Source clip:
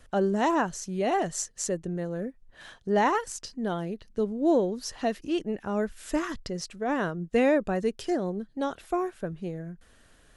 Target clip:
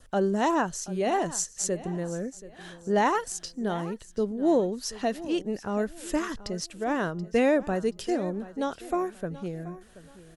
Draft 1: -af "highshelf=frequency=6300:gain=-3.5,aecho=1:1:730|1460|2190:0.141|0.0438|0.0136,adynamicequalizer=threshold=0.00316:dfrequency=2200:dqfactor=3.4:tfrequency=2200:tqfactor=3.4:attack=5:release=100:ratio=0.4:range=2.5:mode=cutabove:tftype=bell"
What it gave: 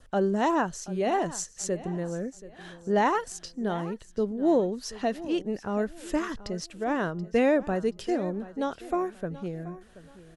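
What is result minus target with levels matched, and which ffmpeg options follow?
8,000 Hz band −4.5 dB
-af "highshelf=frequency=6300:gain=5,aecho=1:1:730|1460|2190:0.141|0.0438|0.0136,adynamicequalizer=threshold=0.00316:dfrequency=2200:dqfactor=3.4:tfrequency=2200:tqfactor=3.4:attack=5:release=100:ratio=0.4:range=2.5:mode=cutabove:tftype=bell"

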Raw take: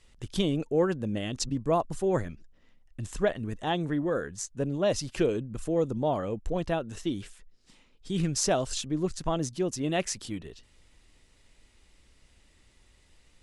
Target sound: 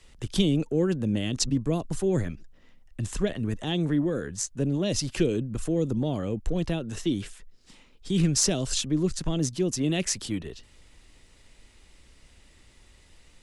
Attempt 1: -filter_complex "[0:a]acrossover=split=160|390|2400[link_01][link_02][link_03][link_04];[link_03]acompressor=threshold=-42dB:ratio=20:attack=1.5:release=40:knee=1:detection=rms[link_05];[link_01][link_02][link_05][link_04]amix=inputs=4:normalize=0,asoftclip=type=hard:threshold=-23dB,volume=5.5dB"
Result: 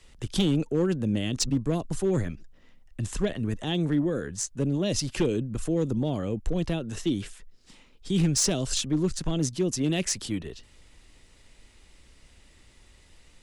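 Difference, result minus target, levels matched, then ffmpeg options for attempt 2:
hard clipping: distortion +21 dB
-filter_complex "[0:a]acrossover=split=160|390|2400[link_01][link_02][link_03][link_04];[link_03]acompressor=threshold=-42dB:ratio=20:attack=1.5:release=40:knee=1:detection=rms[link_05];[link_01][link_02][link_05][link_04]amix=inputs=4:normalize=0,asoftclip=type=hard:threshold=-14dB,volume=5.5dB"

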